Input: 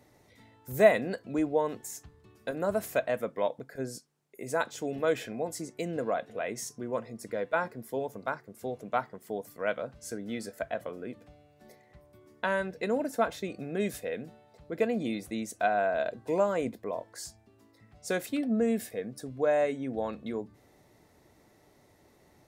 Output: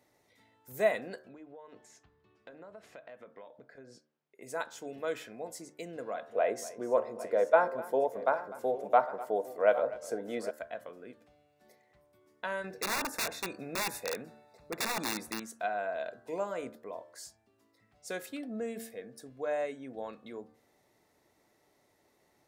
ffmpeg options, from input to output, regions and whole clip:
-filter_complex "[0:a]asettb=1/sr,asplit=3[a][b][c];[a]atrim=end=1.284[d];[b]atrim=start=1.28:end=4.42,asetpts=PTS-STARTPTS,afade=t=in:d=0.004:c=qsin,afade=t=out:st=3.136:d=0.004:c=qsin,lowpass=3.8k,acompressor=threshold=-38dB:ratio=8:attack=3.2:release=140:knee=1:detection=peak[e];[c]atrim=start=4.416[f];[d][e]acrossfade=d=0.004:c1=hsin:c2=qsin[g];[g][f]acrossfade=d=0.004:c1=qsin:c2=hsin,asettb=1/sr,asplit=3[h][i][j];[h]atrim=end=6.324[k];[i]atrim=start=6.32:end=10.51,asetpts=PTS-STARTPTS,afade=t=in:d=0.004:c=qsin,afade=t=out:st=4.186:d=0.004:c=qsin,equalizer=f=610:w=0.59:g=14.5,aecho=1:1:249|806:0.126|0.168,atrim=end_sample=184779[l];[j]atrim=start=10.506[m];[k][l]acrossfade=d=0.004:c1=hsin:c2=qsin[n];[n][m]acrossfade=d=0.004:c1=qsin:c2=hsin,asettb=1/sr,asplit=3[o][p][q];[o]atrim=end=12.644[r];[p]atrim=start=12.64:end=15.4,asetpts=PTS-STARTPTS,afade=t=in:d=0.004:c=qsin,afade=t=out:st=2.756:d=0.004:c=qsin,acontrast=50,aeval=exprs='(mod(10*val(0)+1,2)-1)/10':c=same,asuperstop=centerf=3100:order=20:qfactor=5.2[s];[q]atrim=start=15.396[t];[r][s]acrossfade=d=0.004:c1=hsin:c2=qsin[u];[u][t]acrossfade=d=0.004:c1=qsin:c2=hsin,lowshelf=f=220:g=-11,bandreject=f=75.72:t=h:w=4,bandreject=f=151.44:t=h:w=4,bandreject=f=227.16:t=h:w=4,bandreject=f=302.88:t=h:w=4,bandreject=f=378.6:t=h:w=4,bandreject=f=454.32:t=h:w=4,bandreject=f=530.04:t=h:w=4,bandreject=f=605.76:t=h:w=4,bandreject=f=681.48:t=h:w=4,bandreject=f=757.2:t=h:w=4,bandreject=f=832.92:t=h:w=4,bandreject=f=908.64:t=h:w=4,bandreject=f=984.36:t=h:w=4,bandreject=f=1.06008k:t=h:w=4,bandreject=f=1.1358k:t=h:w=4,bandreject=f=1.21152k:t=h:w=4,bandreject=f=1.28724k:t=h:w=4,bandreject=f=1.36296k:t=h:w=4,bandreject=f=1.43868k:t=h:w=4,bandreject=f=1.5144k:t=h:w=4,bandreject=f=1.59012k:t=h:w=4,bandreject=f=1.66584k:t=h:w=4,bandreject=f=1.74156k:t=h:w=4,bandreject=f=1.81728k:t=h:w=4,volume=-5.5dB"

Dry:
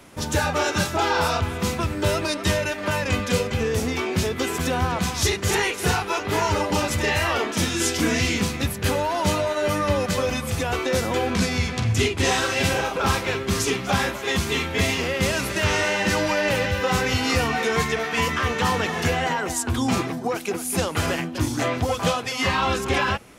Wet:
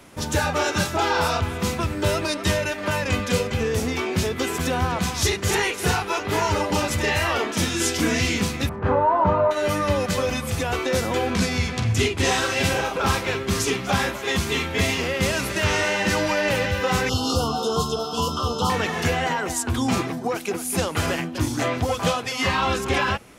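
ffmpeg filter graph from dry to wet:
-filter_complex "[0:a]asettb=1/sr,asplit=3[a][b][c];[a]atrim=end=8.694[d];[b]atrim=start=8.69:end=9.51,asetpts=PTS-STARTPTS,afade=t=in:d=0.004:c=qsin,afade=t=out:st=0.816:d=0.004:c=qsin,lowpass=f=1.1k:t=q:w=2.2,asplit=2[e][f];[f]adelay=28,volume=-8dB[g];[e][g]amix=inputs=2:normalize=0,atrim=end_sample=36162[h];[c]atrim=start=9.506[i];[d][h]acrossfade=d=0.004:c1=hsin:c2=qsin[j];[j][i]acrossfade=d=0.004:c1=qsin:c2=hsin,asettb=1/sr,asplit=3[k][l][m];[k]atrim=end=17.094[n];[l]atrim=start=17.09:end=18.7,asetpts=PTS-STARTPTS,afade=t=in:d=0.004:c=qsin,afade=t=out:st=1.606:d=0.004:c=qsin,aeval=exprs='val(0)+0.0141*sin(2*PI*5200*n/s)':c=same,asuperstop=centerf=2000:order=12:qfactor=1.3[o];[m]atrim=start=18.696[p];[n][o]acrossfade=d=0.004:c1=hsin:c2=qsin[q];[q][p]acrossfade=d=0.004:c1=qsin:c2=hsin"

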